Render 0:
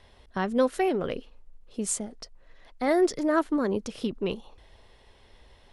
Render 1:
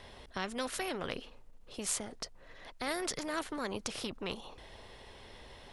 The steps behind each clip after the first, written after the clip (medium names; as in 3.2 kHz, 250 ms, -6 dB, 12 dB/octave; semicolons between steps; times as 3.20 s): spectrum-flattening compressor 2:1; trim -4 dB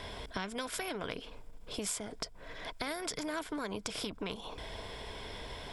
rippled EQ curve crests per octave 1.7, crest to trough 6 dB; compression 4:1, threshold -44 dBFS, peak gain reduction 12 dB; trim +8 dB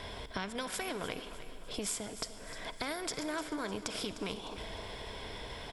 feedback delay 303 ms, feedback 48%, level -13 dB; reverberation RT60 3.4 s, pre-delay 49 ms, DRR 12.5 dB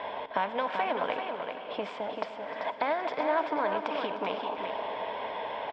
cabinet simulation 360–2600 Hz, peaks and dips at 370 Hz -7 dB, 600 Hz +5 dB, 890 Hz +8 dB, 1.4 kHz -5 dB, 2.1 kHz -4 dB; feedback delay 387 ms, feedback 32%, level -6 dB; trim +8.5 dB